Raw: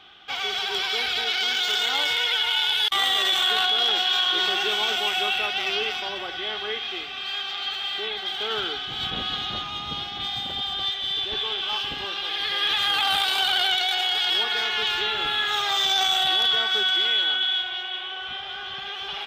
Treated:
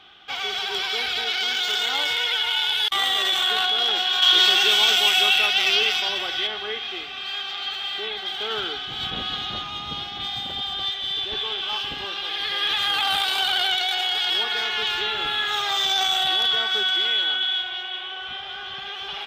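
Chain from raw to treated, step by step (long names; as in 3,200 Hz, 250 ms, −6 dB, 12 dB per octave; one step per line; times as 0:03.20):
0:04.22–0:06.47: high-shelf EQ 2,300 Hz +11 dB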